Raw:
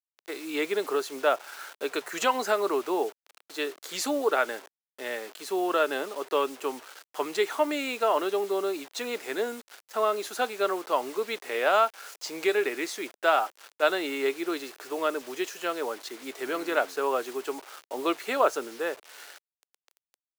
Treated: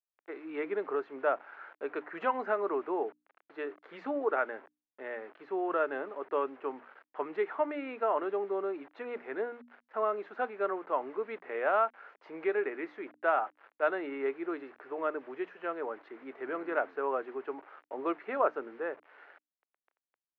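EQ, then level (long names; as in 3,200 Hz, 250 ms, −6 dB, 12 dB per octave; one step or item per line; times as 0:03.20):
low-pass filter 2,000 Hz 24 dB per octave
mains-hum notches 60/120/180/240/300 Hz
−5.0 dB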